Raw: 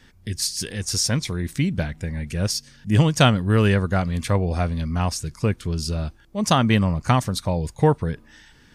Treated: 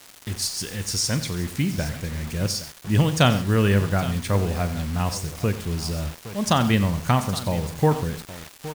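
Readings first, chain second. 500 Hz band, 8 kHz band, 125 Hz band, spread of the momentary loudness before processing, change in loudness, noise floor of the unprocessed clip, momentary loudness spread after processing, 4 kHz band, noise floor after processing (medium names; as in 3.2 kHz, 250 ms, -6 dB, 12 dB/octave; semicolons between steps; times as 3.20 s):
-1.5 dB, -1.0 dB, -1.5 dB, 10 LU, -1.5 dB, -53 dBFS, 10 LU, -1.0 dB, -48 dBFS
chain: crackle 540 per s -30 dBFS; multi-tap echo 40/91/134/817 ms -15/-14/-19/-15.5 dB; word length cut 6-bit, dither none; trim -2 dB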